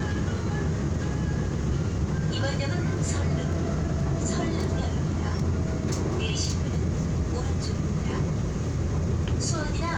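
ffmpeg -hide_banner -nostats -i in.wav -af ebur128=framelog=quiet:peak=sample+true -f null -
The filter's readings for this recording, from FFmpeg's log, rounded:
Integrated loudness:
  I:         -27.5 LUFS
  Threshold: -37.5 LUFS
Loudness range:
  LRA:         0.6 LU
  Threshold: -47.4 LUFS
  LRA low:   -27.7 LUFS
  LRA high:  -27.1 LUFS
Sample peak:
  Peak:      -15.4 dBFS
True peak:
  Peak:      -15.4 dBFS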